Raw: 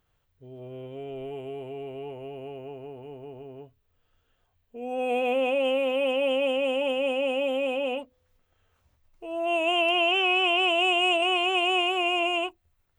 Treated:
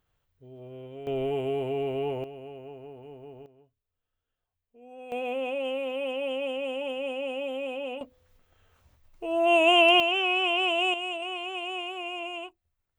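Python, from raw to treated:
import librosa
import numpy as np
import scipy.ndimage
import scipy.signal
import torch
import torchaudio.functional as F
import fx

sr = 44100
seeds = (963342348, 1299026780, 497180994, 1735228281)

y = fx.gain(x, sr, db=fx.steps((0.0, -3.0), (1.07, 7.5), (2.24, -3.5), (3.46, -15.5), (5.12, -6.0), (8.01, 5.0), (10.0, -2.5), (10.94, -10.0)))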